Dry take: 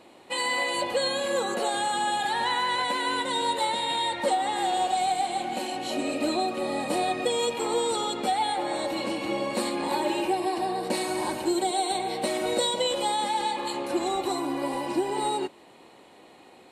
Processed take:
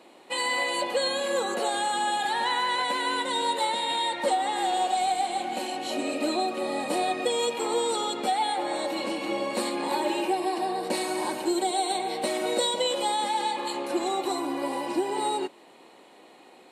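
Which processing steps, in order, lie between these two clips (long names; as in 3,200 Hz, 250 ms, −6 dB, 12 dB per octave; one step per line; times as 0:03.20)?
high-pass filter 210 Hz 12 dB per octave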